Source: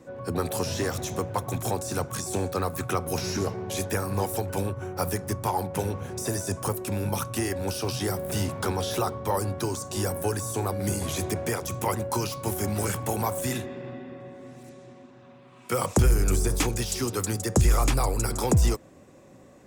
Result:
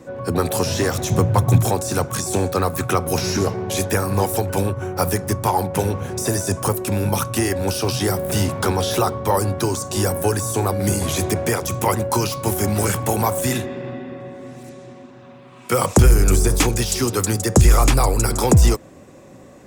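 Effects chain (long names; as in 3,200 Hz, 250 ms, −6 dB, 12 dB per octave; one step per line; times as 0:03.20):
0:01.10–0:01.65: parametric band 120 Hz +11 dB 1.6 octaves
level +8 dB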